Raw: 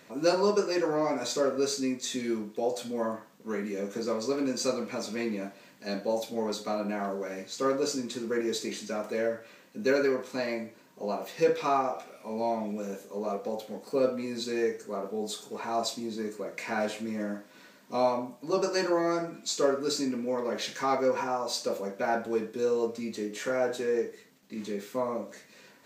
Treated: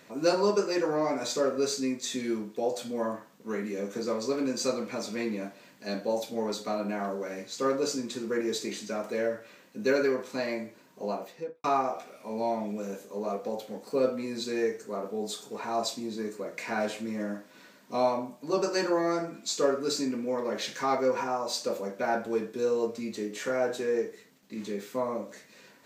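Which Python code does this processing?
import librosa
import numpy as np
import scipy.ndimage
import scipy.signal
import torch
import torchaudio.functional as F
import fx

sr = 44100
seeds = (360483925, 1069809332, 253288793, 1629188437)

y = fx.studio_fade_out(x, sr, start_s=11.05, length_s=0.59)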